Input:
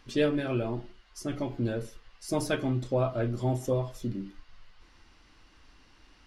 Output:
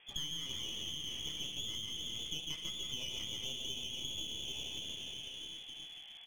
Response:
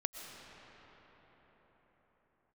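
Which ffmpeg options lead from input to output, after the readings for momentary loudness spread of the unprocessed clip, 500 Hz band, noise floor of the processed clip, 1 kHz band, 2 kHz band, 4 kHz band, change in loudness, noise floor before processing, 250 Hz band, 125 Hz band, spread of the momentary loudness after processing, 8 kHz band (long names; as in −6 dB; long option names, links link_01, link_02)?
12 LU, −26.5 dB, −52 dBFS, −21.5 dB, −10.5 dB, +11.0 dB, −8.5 dB, −60 dBFS, −22.0 dB, −21.0 dB, 5 LU, +3.0 dB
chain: -filter_complex "[0:a]highpass=190,aecho=1:1:15|67:0.447|0.299,asplit=2[link_01][link_02];[1:a]atrim=start_sample=2205,lowpass=frequency=3600:width=0.5412,lowpass=frequency=3600:width=1.3066,adelay=145[link_03];[link_02][link_03]afir=irnorm=-1:irlink=0,volume=-3dB[link_04];[link_01][link_04]amix=inputs=2:normalize=0,acompressor=threshold=-37dB:ratio=16,equalizer=frequency=2300:width_type=o:width=0.81:gain=-11.5,lowpass=frequency=3100:width_type=q:width=0.5098,lowpass=frequency=3100:width_type=q:width=0.6013,lowpass=frequency=3100:width_type=q:width=0.9,lowpass=frequency=3100:width_type=q:width=2.563,afreqshift=-3600,aeval=exprs='clip(val(0),-1,0.00299)':channel_layout=same,volume=2.5dB"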